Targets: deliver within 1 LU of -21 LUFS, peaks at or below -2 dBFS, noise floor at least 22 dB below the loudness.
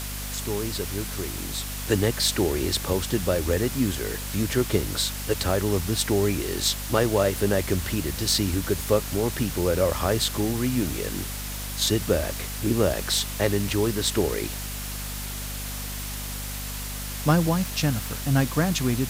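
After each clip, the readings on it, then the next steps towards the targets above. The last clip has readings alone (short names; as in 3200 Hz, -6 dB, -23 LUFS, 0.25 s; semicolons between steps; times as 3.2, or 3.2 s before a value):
hum 50 Hz; harmonics up to 250 Hz; hum level -32 dBFS; noise floor -33 dBFS; noise floor target -48 dBFS; loudness -25.5 LUFS; peak -6.5 dBFS; loudness target -21.0 LUFS
-> notches 50/100/150/200/250 Hz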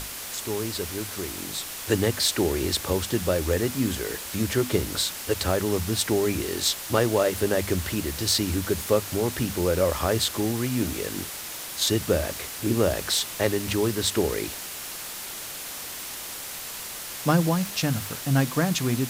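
hum none; noise floor -36 dBFS; noise floor target -48 dBFS
-> denoiser 12 dB, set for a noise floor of -36 dBFS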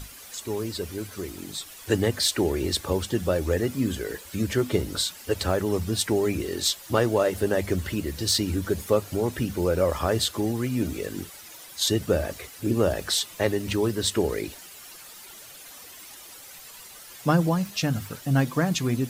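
noise floor -45 dBFS; noise floor target -48 dBFS
-> denoiser 6 dB, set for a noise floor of -45 dBFS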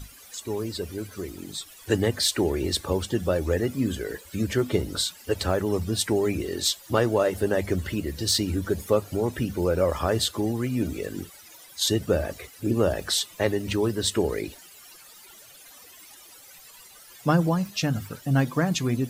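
noise floor -49 dBFS; loudness -26.0 LUFS; peak -7.5 dBFS; loudness target -21.0 LUFS
-> gain +5 dB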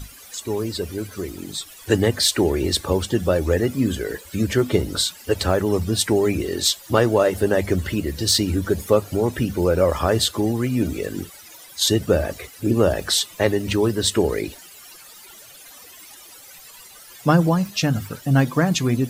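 loudness -21.0 LUFS; peak -2.5 dBFS; noise floor -44 dBFS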